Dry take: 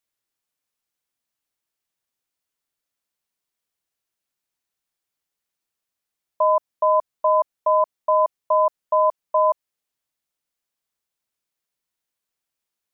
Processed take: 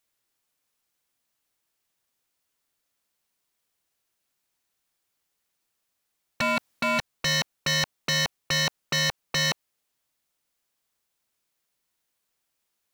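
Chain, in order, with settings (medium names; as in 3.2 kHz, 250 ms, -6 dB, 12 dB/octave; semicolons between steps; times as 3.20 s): 6.41–6.99 s: compressor with a negative ratio -23 dBFS, ratio -1; wavefolder -24 dBFS; trim +5.5 dB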